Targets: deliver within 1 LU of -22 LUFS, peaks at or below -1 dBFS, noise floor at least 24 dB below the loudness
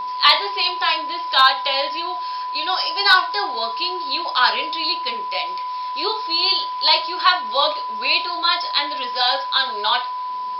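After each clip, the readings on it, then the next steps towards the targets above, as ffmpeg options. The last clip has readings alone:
steady tone 1 kHz; tone level -24 dBFS; loudness -19.0 LUFS; peak level -2.0 dBFS; loudness target -22.0 LUFS
-> -af "bandreject=f=1000:w=30"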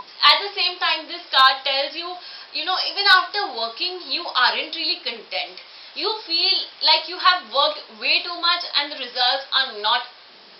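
steady tone not found; loudness -19.5 LUFS; peak level -2.0 dBFS; loudness target -22.0 LUFS
-> -af "volume=0.75"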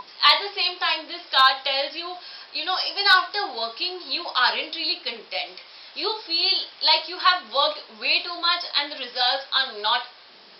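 loudness -22.0 LUFS; peak level -4.5 dBFS; noise floor -48 dBFS

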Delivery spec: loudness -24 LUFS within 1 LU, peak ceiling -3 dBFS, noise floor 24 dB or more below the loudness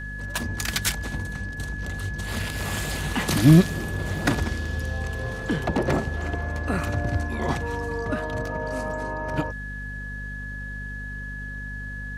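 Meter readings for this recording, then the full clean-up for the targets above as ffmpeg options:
hum 50 Hz; highest harmonic 250 Hz; hum level -33 dBFS; steady tone 1.7 kHz; tone level -35 dBFS; loudness -26.5 LUFS; peak level -3.5 dBFS; loudness target -24.0 LUFS
-> -af "bandreject=f=50:t=h:w=4,bandreject=f=100:t=h:w=4,bandreject=f=150:t=h:w=4,bandreject=f=200:t=h:w=4,bandreject=f=250:t=h:w=4"
-af "bandreject=f=1700:w=30"
-af "volume=1.33,alimiter=limit=0.708:level=0:latency=1"

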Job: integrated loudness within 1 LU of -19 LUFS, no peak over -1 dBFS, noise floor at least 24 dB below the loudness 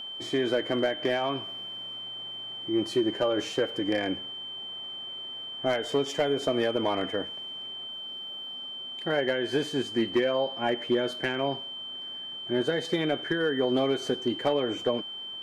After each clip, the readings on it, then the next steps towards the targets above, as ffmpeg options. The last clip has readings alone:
steady tone 3.1 kHz; tone level -36 dBFS; loudness -29.5 LUFS; peak level -16.5 dBFS; loudness target -19.0 LUFS
-> -af "bandreject=f=3100:w=30"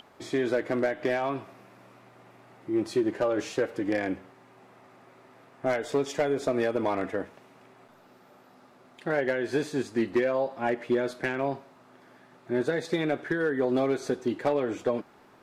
steady tone not found; loudness -29.0 LUFS; peak level -17.0 dBFS; loudness target -19.0 LUFS
-> -af "volume=3.16"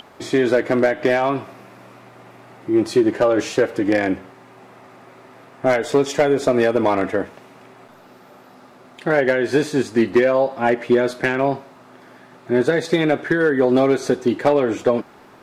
loudness -19.0 LUFS; peak level -7.0 dBFS; noise floor -47 dBFS

